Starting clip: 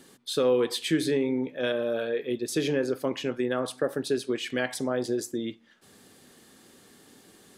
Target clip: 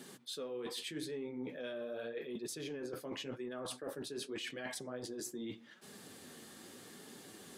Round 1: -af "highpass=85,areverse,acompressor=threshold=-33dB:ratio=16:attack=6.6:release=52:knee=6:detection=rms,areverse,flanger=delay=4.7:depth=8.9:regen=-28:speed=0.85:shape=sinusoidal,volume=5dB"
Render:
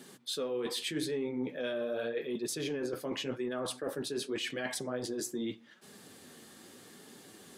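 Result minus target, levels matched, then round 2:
downward compressor: peak gain reduction −7.5 dB
-af "highpass=85,areverse,acompressor=threshold=-41dB:ratio=16:attack=6.6:release=52:knee=6:detection=rms,areverse,flanger=delay=4.7:depth=8.9:regen=-28:speed=0.85:shape=sinusoidal,volume=5dB"

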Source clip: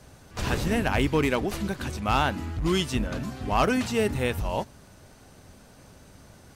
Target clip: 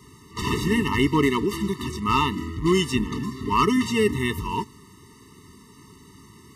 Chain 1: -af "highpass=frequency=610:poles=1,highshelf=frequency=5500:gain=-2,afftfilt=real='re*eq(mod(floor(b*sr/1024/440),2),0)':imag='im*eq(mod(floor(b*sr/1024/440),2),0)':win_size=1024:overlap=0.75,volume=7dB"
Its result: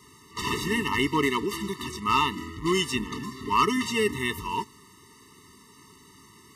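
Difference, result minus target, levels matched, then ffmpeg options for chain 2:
250 Hz band −3.0 dB
-af "highpass=frequency=190:poles=1,highshelf=frequency=5500:gain=-2,afftfilt=real='re*eq(mod(floor(b*sr/1024/440),2),0)':imag='im*eq(mod(floor(b*sr/1024/440),2),0)':win_size=1024:overlap=0.75,volume=7dB"

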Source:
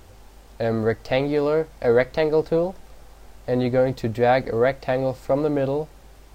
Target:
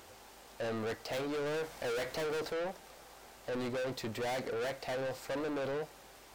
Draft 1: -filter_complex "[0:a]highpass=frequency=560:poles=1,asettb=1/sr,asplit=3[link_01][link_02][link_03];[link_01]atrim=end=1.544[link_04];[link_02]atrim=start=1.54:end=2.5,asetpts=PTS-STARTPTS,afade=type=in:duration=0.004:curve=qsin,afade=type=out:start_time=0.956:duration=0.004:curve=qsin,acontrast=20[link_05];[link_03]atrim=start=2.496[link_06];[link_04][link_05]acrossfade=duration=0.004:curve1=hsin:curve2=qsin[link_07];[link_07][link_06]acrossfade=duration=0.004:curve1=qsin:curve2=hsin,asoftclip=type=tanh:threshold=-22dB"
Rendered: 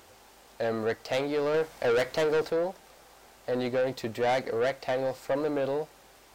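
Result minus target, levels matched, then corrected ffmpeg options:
soft clipping: distortion −6 dB
-filter_complex "[0:a]highpass=frequency=560:poles=1,asettb=1/sr,asplit=3[link_01][link_02][link_03];[link_01]atrim=end=1.544[link_04];[link_02]atrim=start=1.54:end=2.5,asetpts=PTS-STARTPTS,afade=type=in:duration=0.004:curve=qsin,afade=type=out:start_time=0.956:duration=0.004:curve=qsin,acontrast=20[link_05];[link_03]atrim=start=2.496[link_06];[link_04][link_05]acrossfade=duration=0.004:curve1=hsin:curve2=qsin[link_07];[link_07][link_06]acrossfade=duration=0.004:curve1=qsin:curve2=hsin,asoftclip=type=tanh:threshold=-34dB"

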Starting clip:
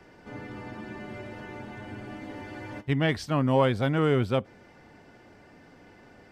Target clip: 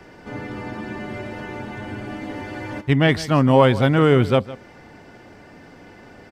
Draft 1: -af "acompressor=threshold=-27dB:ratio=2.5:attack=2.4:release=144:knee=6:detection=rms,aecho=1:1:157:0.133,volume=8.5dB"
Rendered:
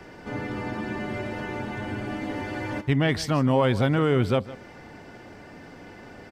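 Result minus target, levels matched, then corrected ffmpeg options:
downward compressor: peak gain reduction +8.5 dB
-af "aecho=1:1:157:0.133,volume=8.5dB"

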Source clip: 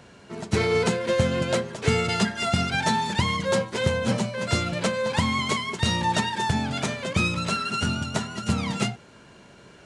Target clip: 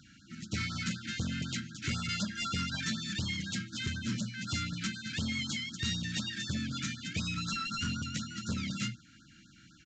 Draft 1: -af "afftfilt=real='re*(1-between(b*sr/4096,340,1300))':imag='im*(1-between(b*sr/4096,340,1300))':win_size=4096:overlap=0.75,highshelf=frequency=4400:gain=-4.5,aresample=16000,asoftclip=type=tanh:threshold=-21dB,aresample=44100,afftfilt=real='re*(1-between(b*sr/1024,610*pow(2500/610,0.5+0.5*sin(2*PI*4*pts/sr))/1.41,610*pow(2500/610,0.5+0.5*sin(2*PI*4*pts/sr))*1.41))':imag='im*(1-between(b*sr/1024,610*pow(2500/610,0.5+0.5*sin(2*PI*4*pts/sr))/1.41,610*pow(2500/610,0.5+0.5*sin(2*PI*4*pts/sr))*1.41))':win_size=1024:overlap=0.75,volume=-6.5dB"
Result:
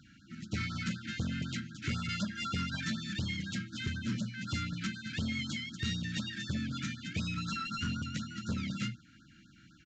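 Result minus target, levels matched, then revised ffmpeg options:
8,000 Hz band −5.5 dB
-af "afftfilt=real='re*(1-between(b*sr/4096,340,1300))':imag='im*(1-between(b*sr/4096,340,1300))':win_size=4096:overlap=0.75,highshelf=frequency=4400:gain=6,aresample=16000,asoftclip=type=tanh:threshold=-21dB,aresample=44100,afftfilt=real='re*(1-between(b*sr/1024,610*pow(2500/610,0.5+0.5*sin(2*PI*4*pts/sr))/1.41,610*pow(2500/610,0.5+0.5*sin(2*PI*4*pts/sr))*1.41))':imag='im*(1-between(b*sr/1024,610*pow(2500/610,0.5+0.5*sin(2*PI*4*pts/sr))/1.41,610*pow(2500/610,0.5+0.5*sin(2*PI*4*pts/sr))*1.41))':win_size=1024:overlap=0.75,volume=-6.5dB"

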